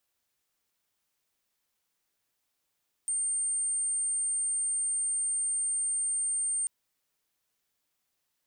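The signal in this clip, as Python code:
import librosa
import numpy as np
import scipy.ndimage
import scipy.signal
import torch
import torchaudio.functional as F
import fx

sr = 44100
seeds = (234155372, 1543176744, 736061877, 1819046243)

y = 10.0 ** (-27.0 / 20.0) * np.sin(2.0 * np.pi * (8740.0 * (np.arange(round(3.59 * sr)) / sr)))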